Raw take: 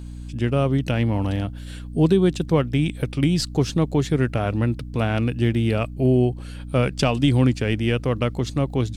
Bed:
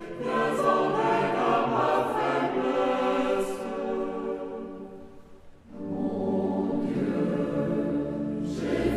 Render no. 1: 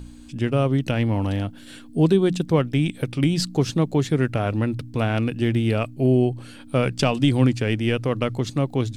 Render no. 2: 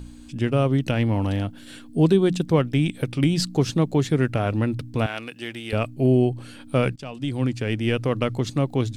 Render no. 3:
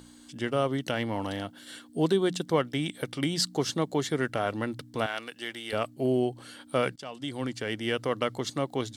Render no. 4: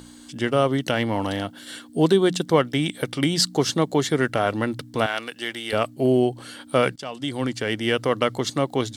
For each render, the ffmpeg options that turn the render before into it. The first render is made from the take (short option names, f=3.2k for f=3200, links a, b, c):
-af "bandreject=f=60:t=h:w=4,bandreject=f=120:t=h:w=4,bandreject=f=180:t=h:w=4"
-filter_complex "[0:a]asettb=1/sr,asplit=3[a][b][c];[a]atrim=end=5.064[d];[b]atrim=start=5.06:end=5.73,asetpts=PTS-STARTPTS,afade=t=in:d=0.004:c=qsin,afade=t=out:st=0.666:d=0.004:c=qsin,highpass=f=1.3k:p=1[e];[c]atrim=start=5.726[f];[d][e]acrossfade=d=0.004:c1=hsin:c2=qsin[g];[g][f]acrossfade=d=0.004:c1=qsin:c2=hsin,asplit=2[h][i];[h]atrim=end=6.96,asetpts=PTS-STARTPTS,afade=t=out:st=6.956:d=0.004:c=hsin:silence=0.0794328[j];[i]atrim=start=6.96,asetpts=PTS-STARTPTS,afade=t=in:d=1.02:silence=0.0794328[k];[j][k]concat=n=2:v=0:a=1"
-af "highpass=f=630:p=1,bandreject=f=2.5k:w=5.3"
-af "volume=7dB"